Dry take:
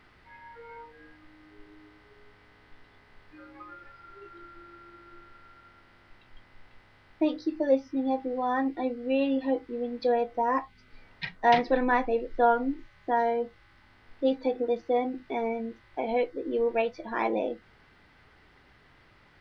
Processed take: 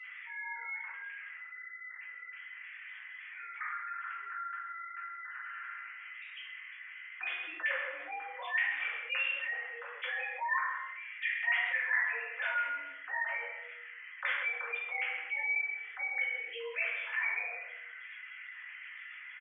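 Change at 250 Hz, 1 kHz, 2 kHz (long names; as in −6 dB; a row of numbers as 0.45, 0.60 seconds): below −40 dB, −11.5 dB, +7.0 dB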